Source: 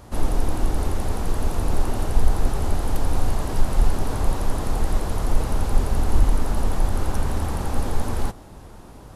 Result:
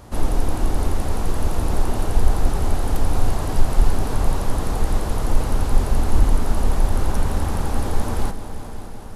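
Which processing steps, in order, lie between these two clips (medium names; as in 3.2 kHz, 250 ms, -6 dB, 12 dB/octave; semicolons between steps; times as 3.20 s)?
multi-head delay 188 ms, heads all three, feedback 62%, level -17.5 dB; trim +1.5 dB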